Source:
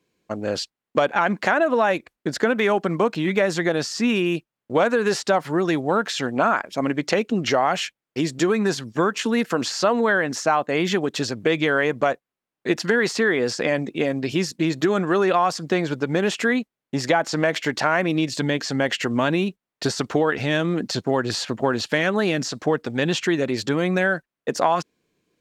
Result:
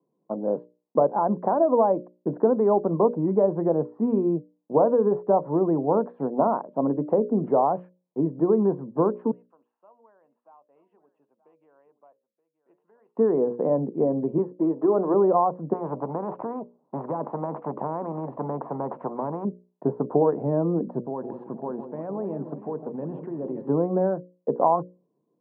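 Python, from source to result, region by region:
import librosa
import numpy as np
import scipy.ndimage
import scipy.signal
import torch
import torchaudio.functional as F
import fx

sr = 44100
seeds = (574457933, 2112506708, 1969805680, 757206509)

y = fx.chain(x, sr, fx.bandpass_q(hz=2800.0, q=12.0),
    fx.echo_single(ms=926, db=-16.5), at=(9.31, 13.17))
y = fx.chain(y, sr, fx.highpass(hz=330.0, slope=12),
    fx.leveller(passes=1), at=(14.38, 15.14))
y = fx.chain(y, sr, fx.lowpass(hz=2200.0, slope=12),
    fx.spectral_comp(ratio=4.0), at=(15.73, 19.45))
y = fx.chain(y, sr, fx.level_steps(step_db=15),
    fx.peak_eq(hz=3000.0, db=11.0, octaves=1.4),
    fx.echo_alternate(ms=159, hz=1000.0, feedback_pct=69, wet_db=-8.0), at=(21.01, 23.69))
y = scipy.signal.sosfilt(scipy.signal.cheby1(4, 1.0, [140.0, 1000.0], 'bandpass', fs=sr, output='sos'), y)
y = fx.hum_notches(y, sr, base_hz=60, count=10)
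y = fx.dynamic_eq(y, sr, hz=440.0, q=3.6, threshold_db=-35.0, ratio=4.0, max_db=3)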